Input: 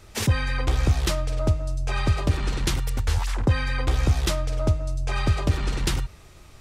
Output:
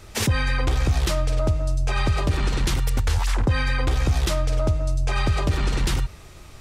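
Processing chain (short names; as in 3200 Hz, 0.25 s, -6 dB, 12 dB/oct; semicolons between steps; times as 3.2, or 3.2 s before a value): limiter -17.5 dBFS, peak gain reduction 6.5 dB; gain +4.5 dB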